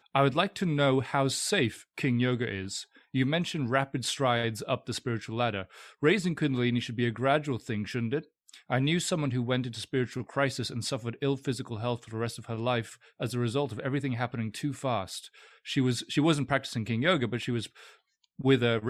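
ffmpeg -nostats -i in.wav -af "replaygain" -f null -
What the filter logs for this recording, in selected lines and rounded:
track_gain = +9.2 dB
track_peak = 0.236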